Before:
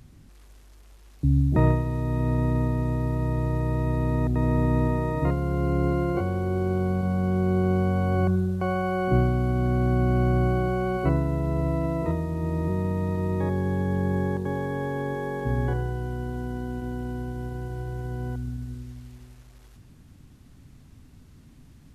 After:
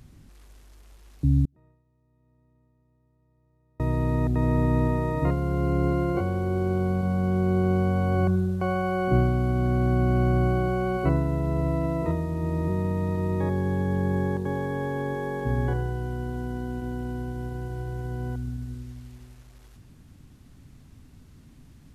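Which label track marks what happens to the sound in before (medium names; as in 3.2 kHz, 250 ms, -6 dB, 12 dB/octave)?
1.450000	3.800000	inverted gate shuts at -25 dBFS, range -41 dB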